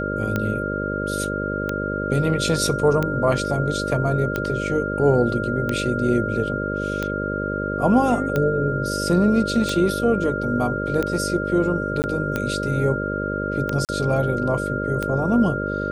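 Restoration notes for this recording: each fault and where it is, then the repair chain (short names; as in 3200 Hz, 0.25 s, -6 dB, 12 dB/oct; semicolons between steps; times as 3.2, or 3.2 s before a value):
buzz 50 Hz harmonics 12 -27 dBFS
tick 45 rpm -10 dBFS
tone 1400 Hz -27 dBFS
12.02–12.04 gap 19 ms
13.85–13.89 gap 38 ms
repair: de-click; notch 1400 Hz, Q 30; de-hum 50 Hz, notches 12; interpolate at 12.02, 19 ms; interpolate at 13.85, 38 ms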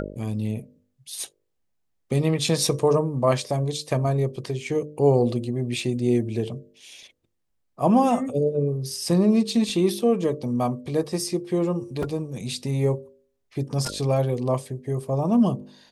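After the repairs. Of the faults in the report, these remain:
none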